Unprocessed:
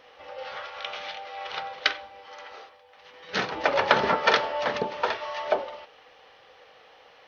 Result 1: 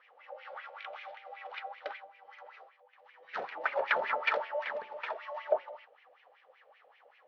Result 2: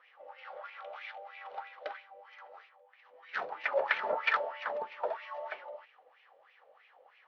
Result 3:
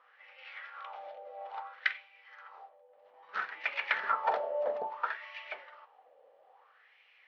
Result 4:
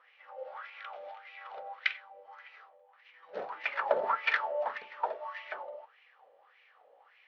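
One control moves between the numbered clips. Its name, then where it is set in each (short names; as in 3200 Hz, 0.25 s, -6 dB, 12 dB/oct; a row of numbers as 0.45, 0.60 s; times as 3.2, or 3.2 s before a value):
wah, rate: 5.2, 3.1, 0.6, 1.7 Hz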